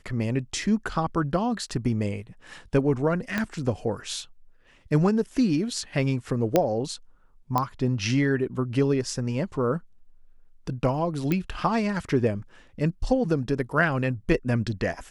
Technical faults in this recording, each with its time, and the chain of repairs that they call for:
3.38 pop -12 dBFS
6.56 pop -6 dBFS
7.58 pop -11 dBFS
11.32 pop -13 dBFS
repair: de-click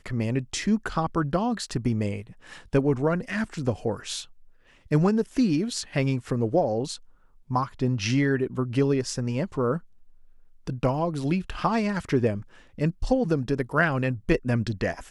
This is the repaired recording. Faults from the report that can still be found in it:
3.38 pop

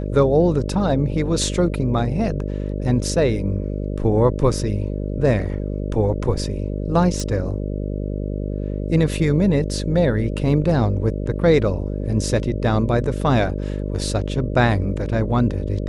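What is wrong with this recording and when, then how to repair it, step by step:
buzz 50 Hz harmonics 12 -25 dBFS
7.2 pop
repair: de-click; de-hum 50 Hz, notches 12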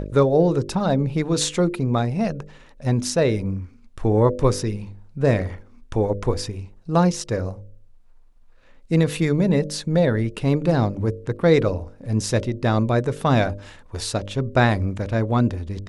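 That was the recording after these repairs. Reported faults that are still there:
7.2 pop

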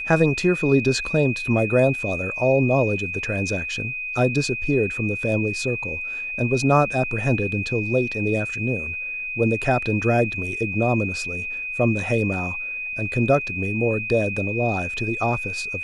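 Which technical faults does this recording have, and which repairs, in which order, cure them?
tone 2500 Hz -27 dBFS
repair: notch 2500 Hz, Q 30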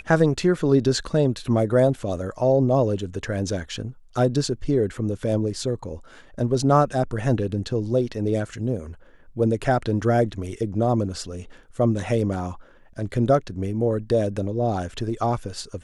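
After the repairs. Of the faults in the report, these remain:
none

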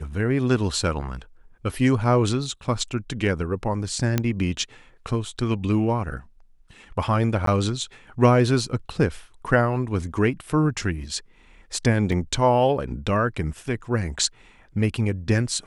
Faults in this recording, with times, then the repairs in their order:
4.18 pop -7 dBFS
7.46–7.47 gap 13 ms
12.12 gap 2.5 ms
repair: de-click; interpolate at 7.46, 13 ms; interpolate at 12.12, 2.5 ms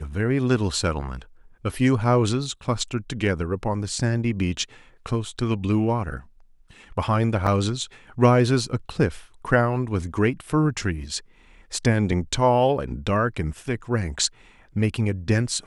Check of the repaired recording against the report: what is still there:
none

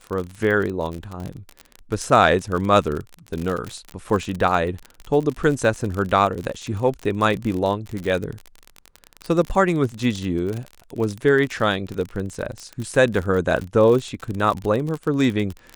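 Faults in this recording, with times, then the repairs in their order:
crackle 47/s -25 dBFS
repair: de-click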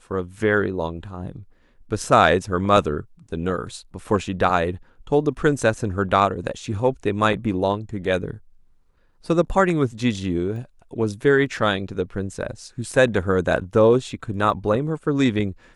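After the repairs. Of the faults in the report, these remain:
none

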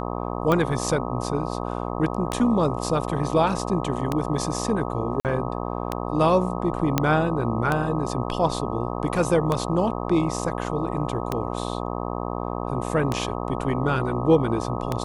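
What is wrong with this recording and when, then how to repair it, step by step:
buzz 60 Hz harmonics 21 -29 dBFS
tick 33 1/3 rpm -10 dBFS
5.2–5.25 gap 48 ms
6.98 pop -5 dBFS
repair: de-click; de-hum 60 Hz, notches 21; interpolate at 5.2, 48 ms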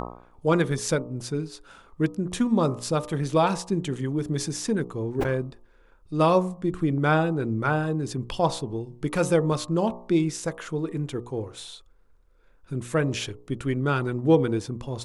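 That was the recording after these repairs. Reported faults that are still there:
none

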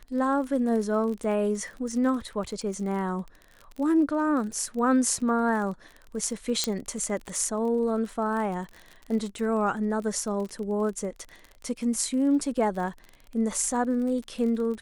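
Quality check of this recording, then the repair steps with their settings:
crackle 31/s -34 dBFS
6.64 pop -9 dBFS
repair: de-click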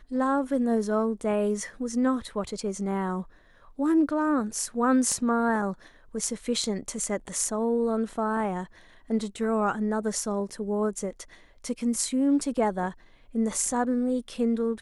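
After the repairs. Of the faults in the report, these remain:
6.64 pop

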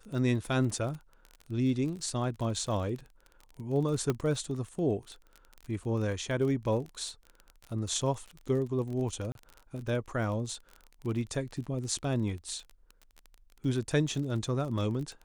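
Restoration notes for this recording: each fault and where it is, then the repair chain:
crackle 30/s -37 dBFS
4.1 pop -16 dBFS
9.32–9.35 gap 32 ms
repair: de-click; interpolate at 9.32, 32 ms

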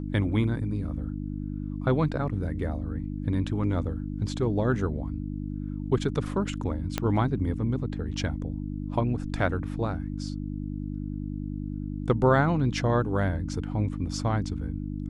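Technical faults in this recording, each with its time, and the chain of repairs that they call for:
hum 50 Hz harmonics 6 -33 dBFS
6.98 pop -11 dBFS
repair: de-click; de-hum 50 Hz, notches 6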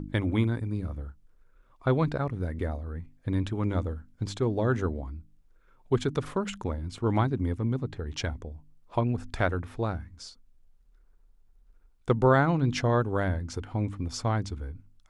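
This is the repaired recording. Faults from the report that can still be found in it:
6.98 pop

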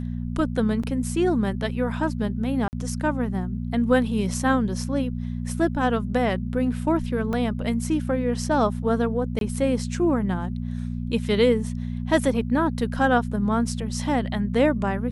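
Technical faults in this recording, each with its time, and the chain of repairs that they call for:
hum 60 Hz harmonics 4 -29 dBFS
0.83 gap 5 ms
2.68–2.73 gap 49 ms
7.33 gap 2.1 ms
9.39–9.41 gap 22 ms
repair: de-hum 60 Hz, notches 4; interpolate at 0.83, 5 ms; interpolate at 2.68, 49 ms; interpolate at 7.33, 2.1 ms; interpolate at 9.39, 22 ms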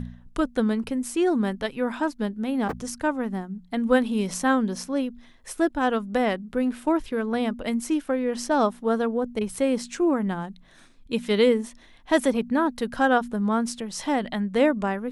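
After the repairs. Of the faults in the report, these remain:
none

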